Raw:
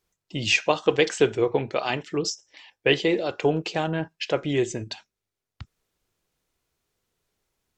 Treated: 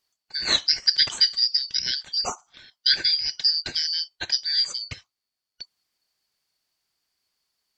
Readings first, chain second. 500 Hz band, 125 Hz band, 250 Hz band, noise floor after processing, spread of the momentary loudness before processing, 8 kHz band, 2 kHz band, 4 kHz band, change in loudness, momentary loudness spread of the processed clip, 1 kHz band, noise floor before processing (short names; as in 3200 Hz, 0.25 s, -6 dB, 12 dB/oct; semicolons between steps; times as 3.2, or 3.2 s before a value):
-22.5 dB, -17.0 dB, -20.5 dB, under -85 dBFS, 10 LU, +1.5 dB, -5.0 dB, +11.0 dB, +3.0 dB, 11 LU, -9.5 dB, under -85 dBFS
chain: four-band scrambler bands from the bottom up 4321